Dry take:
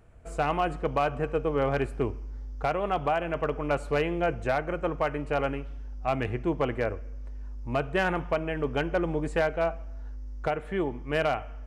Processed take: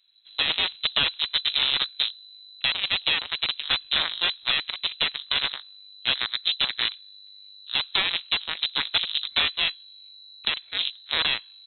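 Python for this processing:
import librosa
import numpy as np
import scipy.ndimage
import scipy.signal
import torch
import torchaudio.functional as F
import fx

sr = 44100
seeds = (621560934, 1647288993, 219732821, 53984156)

y = fx.cheby_harmonics(x, sr, harmonics=(3, 4, 6, 7), levels_db=(-9, -8, -17, -34), full_scale_db=-17.0)
y = fx.freq_invert(y, sr, carrier_hz=4000)
y = y * librosa.db_to_amplitude(3.0)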